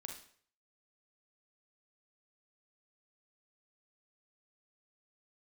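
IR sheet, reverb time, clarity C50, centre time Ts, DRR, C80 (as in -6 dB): 0.55 s, 5.5 dB, 27 ms, 2.0 dB, 10.5 dB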